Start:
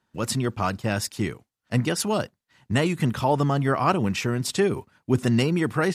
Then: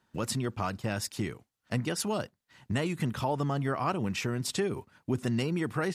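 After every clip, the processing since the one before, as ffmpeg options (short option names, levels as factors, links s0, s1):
-af "acompressor=threshold=0.0158:ratio=2,volume=1.19"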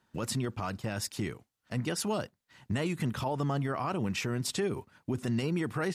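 -af "alimiter=limit=0.075:level=0:latency=1:release=21"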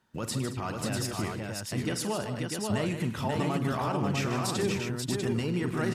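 -af "aecho=1:1:45|103|153|221|537|646:0.251|0.15|0.355|0.168|0.668|0.596"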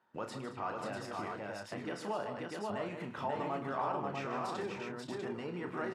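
-filter_complex "[0:a]acompressor=threshold=0.0224:ratio=2,bandpass=f=860:t=q:w=0.84:csg=0,asplit=2[s0][s1];[s1]adelay=29,volume=0.398[s2];[s0][s2]amix=inputs=2:normalize=0,volume=1.12"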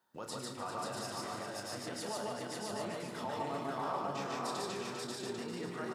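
-filter_complex "[0:a]asplit=2[s0][s1];[s1]aecho=0:1:397:0.376[s2];[s0][s2]amix=inputs=2:normalize=0,aexciter=amount=4.5:drive=2.4:freq=3600,asplit=2[s3][s4];[s4]aecho=0:1:102|148.7:0.355|0.891[s5];[s3][s5]amix=inputs=2:normalize=0,volume=0.596"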